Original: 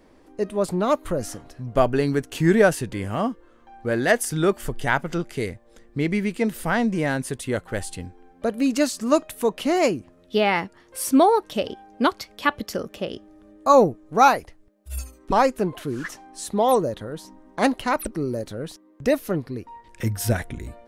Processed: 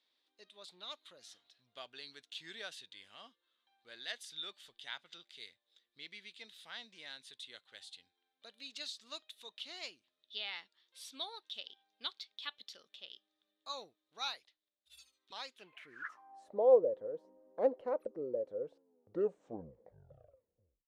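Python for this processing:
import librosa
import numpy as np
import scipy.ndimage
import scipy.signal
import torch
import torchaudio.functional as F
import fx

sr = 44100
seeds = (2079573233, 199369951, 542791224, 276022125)

y = fx.tape_stop_end(x, sr, length_s=2.38)
y = fx.filter_sweep_bandpass(y, sr, from_hz=3700.0, to_hz=510.0, start_s=15.53, end_s=16.61, q=7.2)
y = F.gain(torch.from_numpy(y), -1.5).numpy()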